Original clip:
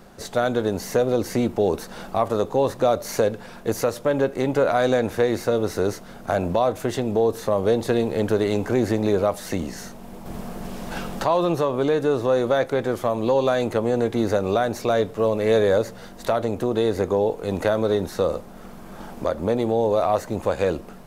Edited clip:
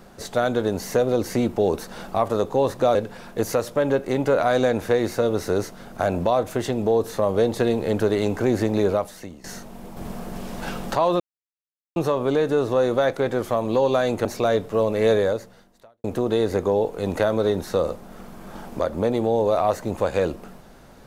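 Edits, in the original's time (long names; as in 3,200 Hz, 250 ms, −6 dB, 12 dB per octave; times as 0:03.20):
0:02.95–0:03.24: remove
0:09.21–0:09.73: fade out quadratic, to −15.5 dB
0:11.49: splice in silence 0.76 s
0:13.78–0:14.70: remove
0:15.58–0:16.49: fade out quadratic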